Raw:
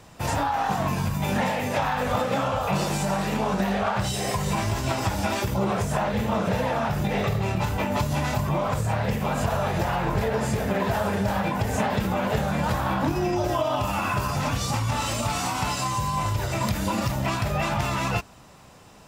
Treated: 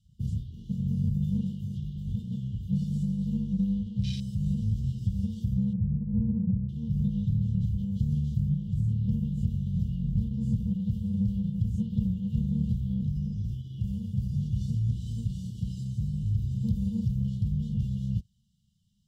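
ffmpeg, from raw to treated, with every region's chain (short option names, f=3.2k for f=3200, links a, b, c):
-filter_complex "[0:a]asettb=1/sr,asplit=3[a][b][c];[a]atrim=end=5.734[d];[b]atrim=start=5.73:end=6.69,asetpts=PTS-STARTPTS,afade=t=in:d=0.004:c=qsin,afade=t=out:st=0.956:d=0.004:c=qsin,lowpass=f=1k:w=0.5412,lowpass=f=1k:w=1.3066,aemphasis=mode=reproduction:type=75fm[e];[c]atrim=start=6.686[f];[d][e]acrossfade=d=0.004:c1=hsin:c2=qsin[g];[g][f]acrossfade=d=0.004:c1=qsin:c2=hsin,afftfilt=real='re*(1-between(b*sr/4096,230,2800))':imag='im*(1-between(b*sr/4096,230,2800))':win_size=4096:overlap=0.75,afwtdn=0.0224,highshelf=f=3k:g=-10.5"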